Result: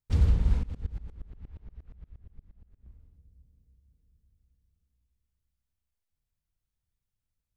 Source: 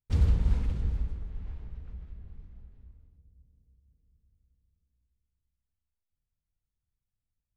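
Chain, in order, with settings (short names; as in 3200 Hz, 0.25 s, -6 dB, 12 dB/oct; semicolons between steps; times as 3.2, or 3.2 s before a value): 0.63–2.87 dB-ramp tremolo swelling 8.5 Hz, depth 24 dB; gain +1 dB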